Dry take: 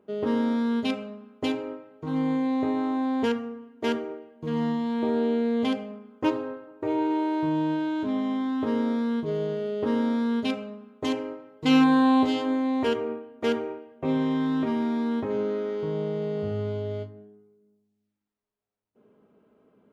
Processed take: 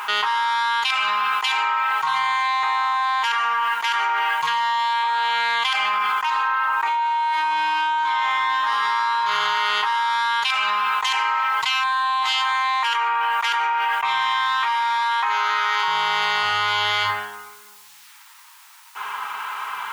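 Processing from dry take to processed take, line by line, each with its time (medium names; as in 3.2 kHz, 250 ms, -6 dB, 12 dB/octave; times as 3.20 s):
7.28–9.09 s: reverb throw, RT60 2.9 s, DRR -1.5 dB
15.02–15.88 s: high-pass 340 Hz
whole clip: elliptic high-pass 910 Hz, stop band 40 dB; level flattener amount 100%; trim +7 dB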